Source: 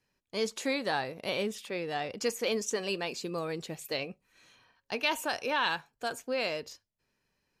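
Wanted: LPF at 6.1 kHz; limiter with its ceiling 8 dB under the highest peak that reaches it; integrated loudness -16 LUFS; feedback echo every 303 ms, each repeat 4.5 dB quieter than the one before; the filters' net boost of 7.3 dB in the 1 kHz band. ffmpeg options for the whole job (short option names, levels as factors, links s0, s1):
-af "lowpass=6100,equalizer=f=1000:t=o:g=9,alimiter=limit=0.106:level=0:latency=1,aecho=1:1:303|606|909|1212|1515|1818|2121|2424|2727:0.596|0.357|0.214|0.129|0.0772|0.0463|0.0278|0.0167|0.01,volume=5.62"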